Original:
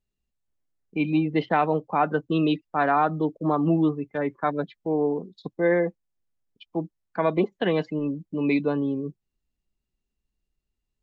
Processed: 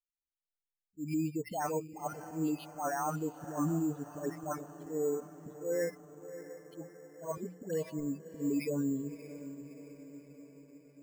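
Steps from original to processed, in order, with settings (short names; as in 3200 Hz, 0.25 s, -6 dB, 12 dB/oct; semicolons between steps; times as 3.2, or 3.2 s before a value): per-bin expansion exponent 2; high shelf 2600 Hz -10 dB; notches 60/120/180 Hz; limiter -25.5 dBFS, peak gain reduction 11 dB; auto swell 0.11 s; dispersion highs, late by 0.132 s, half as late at 1200 Hz; on a send: diffused feedback echo 0.632 s, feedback 58%, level -13 dB; on the sum: careless resampling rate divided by 6×, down filtered, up hold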